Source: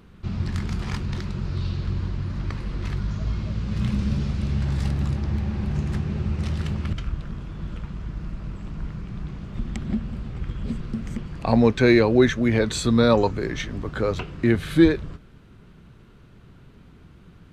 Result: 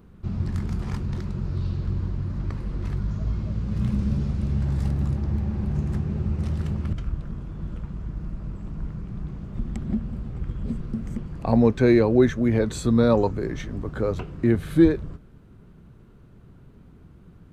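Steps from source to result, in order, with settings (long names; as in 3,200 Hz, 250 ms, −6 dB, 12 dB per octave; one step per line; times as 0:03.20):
parametric band 3,300 Hz −10 dB 2.7 octaves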